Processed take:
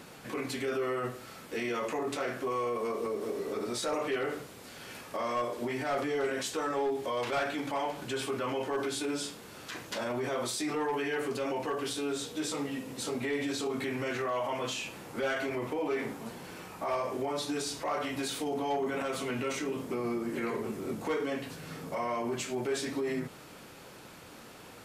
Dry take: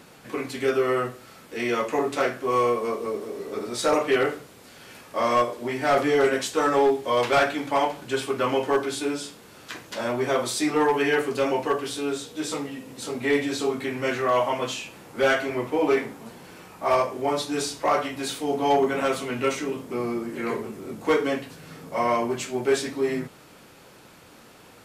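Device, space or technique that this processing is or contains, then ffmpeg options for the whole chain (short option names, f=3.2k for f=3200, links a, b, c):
stacked limiters: -af "alimiter=limit=-20dB:level=0:latency=1:release=19,alimiter=level_in=1.5dB:limit=-24dB:level=0:latency=1:release=108,volume=-1.5dB"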